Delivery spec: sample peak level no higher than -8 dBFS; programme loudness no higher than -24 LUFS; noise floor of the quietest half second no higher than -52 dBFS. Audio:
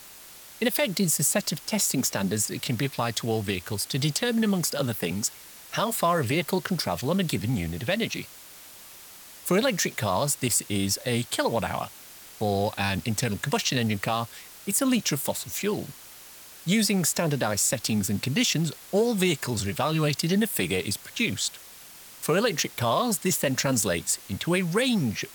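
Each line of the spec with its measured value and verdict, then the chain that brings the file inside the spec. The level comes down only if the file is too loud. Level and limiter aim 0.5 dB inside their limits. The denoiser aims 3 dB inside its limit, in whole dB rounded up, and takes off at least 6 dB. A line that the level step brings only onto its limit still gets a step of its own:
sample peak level -11.5 dBFS: OK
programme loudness -26.0 LUFS: OK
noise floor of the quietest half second -47 dBFS: fail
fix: denoiser 8 dB, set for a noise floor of -47 dBFS

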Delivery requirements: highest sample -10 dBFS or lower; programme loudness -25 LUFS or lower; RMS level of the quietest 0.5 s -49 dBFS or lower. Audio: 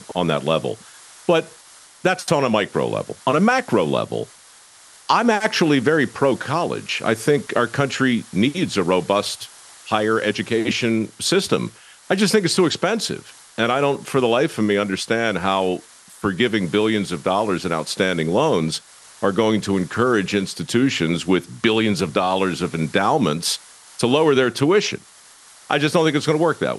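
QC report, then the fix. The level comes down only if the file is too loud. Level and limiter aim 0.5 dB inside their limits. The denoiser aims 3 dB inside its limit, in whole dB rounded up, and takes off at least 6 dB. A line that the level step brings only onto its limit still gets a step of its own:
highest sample -2.0 dBFS: fail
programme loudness -20.0 LUFS: fail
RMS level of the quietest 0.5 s -47 dBFS: fail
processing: gain -5.5 dB; limiter -10.5 dBFS

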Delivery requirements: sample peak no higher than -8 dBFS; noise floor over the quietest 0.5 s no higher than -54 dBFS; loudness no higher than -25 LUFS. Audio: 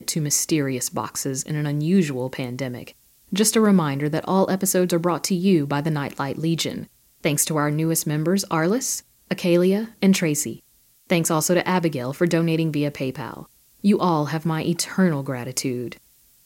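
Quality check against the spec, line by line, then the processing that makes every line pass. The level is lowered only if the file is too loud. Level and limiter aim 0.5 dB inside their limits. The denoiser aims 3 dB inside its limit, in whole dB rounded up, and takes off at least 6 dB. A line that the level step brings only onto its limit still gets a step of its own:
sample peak -6.0 dBFS: fail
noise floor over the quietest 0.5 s -58 dBFS: OK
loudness -22.0 LUFS: fail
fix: gain -3.5 dB

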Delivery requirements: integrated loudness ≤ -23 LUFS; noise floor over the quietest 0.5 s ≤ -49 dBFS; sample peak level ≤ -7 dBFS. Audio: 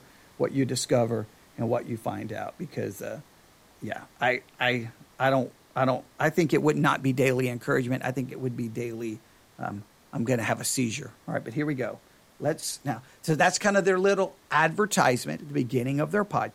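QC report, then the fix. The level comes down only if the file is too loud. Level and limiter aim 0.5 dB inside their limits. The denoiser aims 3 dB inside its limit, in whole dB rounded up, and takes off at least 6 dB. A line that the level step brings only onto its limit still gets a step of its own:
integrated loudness -27.5 LUFS: OK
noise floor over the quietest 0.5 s -57 dBFS: OK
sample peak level -8.0 dBFS: OK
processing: none

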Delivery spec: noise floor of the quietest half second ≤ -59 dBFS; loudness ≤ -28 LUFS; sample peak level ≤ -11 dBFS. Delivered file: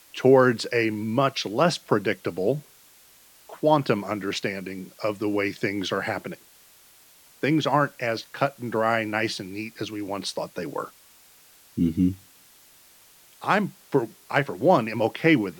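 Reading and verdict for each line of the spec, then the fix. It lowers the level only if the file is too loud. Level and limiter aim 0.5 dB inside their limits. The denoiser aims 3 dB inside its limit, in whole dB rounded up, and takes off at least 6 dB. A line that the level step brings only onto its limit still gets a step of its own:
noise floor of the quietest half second -54 dBFS: fail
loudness -25.0 LUFS: fail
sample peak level -5.5 dBFS: fail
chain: denoiser 6 dB, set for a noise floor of -54 dBFS; gain -3.5 dB; limiter -11.5 dBFS

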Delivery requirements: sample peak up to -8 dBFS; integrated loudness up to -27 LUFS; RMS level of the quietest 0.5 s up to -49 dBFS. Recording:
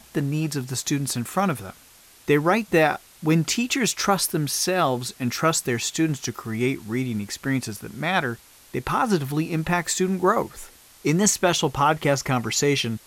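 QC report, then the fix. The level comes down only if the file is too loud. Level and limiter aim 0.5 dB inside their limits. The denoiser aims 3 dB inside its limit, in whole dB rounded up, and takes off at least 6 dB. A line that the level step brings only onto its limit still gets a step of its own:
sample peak -6.5 dBFS: fail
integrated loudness -23.0 LUFS: fail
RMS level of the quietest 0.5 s -51 dBFS: OK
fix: gain -4.5 dB

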